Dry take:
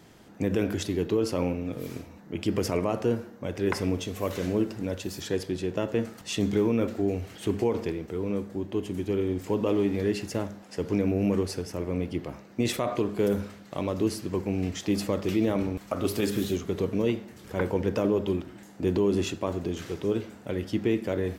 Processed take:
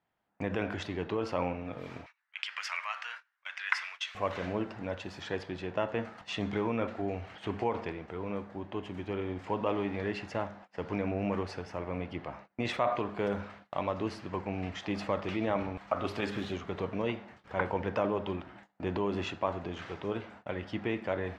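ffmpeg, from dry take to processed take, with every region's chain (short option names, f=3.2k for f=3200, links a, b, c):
-filter_complex "[0:a]asettb=1/sr,asplit=3[a][b][c];[a]atrim=end=2.064[d];[b]atrim=start=2.06:end=4.15,asetpts=PTS-STARTPTS,afade=t=in:d=0.004:c=qsin,afade=t=out:st=2.086:d=0.004:c=qsin,acontrast=77,highpass=f=1.5k:w=0.5412,highpass=f=1.5k:w=1.3066[e];[c]atrim=start=4.146[f];[d][e]acrossfade=d=0.004:c1=hsin:c2=qsin[g];[g][f]acrossfade=d=0.004:c1=qsin:c2=hsin,lowpass=2.6k,agate=range=-25dB:threshold=-46dB:ratio=16:detection=peak,lowshelf=f=550:t=q:w=1.5:g=-8.5,volume=1.5dB"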